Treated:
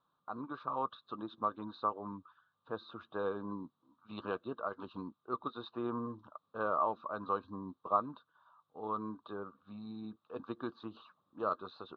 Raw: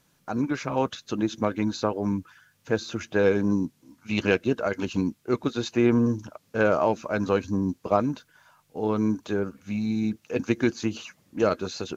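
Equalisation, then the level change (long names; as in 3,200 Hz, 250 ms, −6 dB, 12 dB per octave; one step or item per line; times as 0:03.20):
pair of resonant band-passes 2,100 Hz, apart 1.7 octaves
high-frequency loss of the air 440 metres
spectral tilt −3 dB per octave
+5.0 dB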